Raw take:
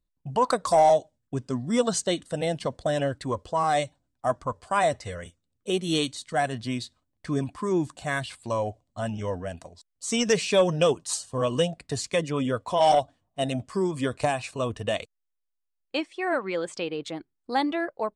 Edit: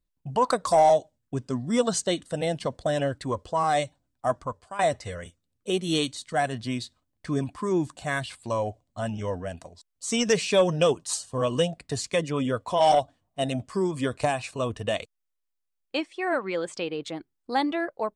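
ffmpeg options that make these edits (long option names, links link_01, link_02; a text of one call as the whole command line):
ffmpeg -i in.wav -filter_complex "[0:a]asplit=2[link_01][link_02];[link_01]atrim=end=4.79,asetpts=PTS-STARTPTS,afade=type=out:start_time=4.37:duration=0.42:silence=0.158489[link_03];[link_02]atrim=start=4.79,asetpts=PTS-STARTPTS,afade=type=in:duration=0.004:curve=hsin:silence=0.158489[link_04];[link_03][link_04]concat=n=2:v=0:a=1" out.wav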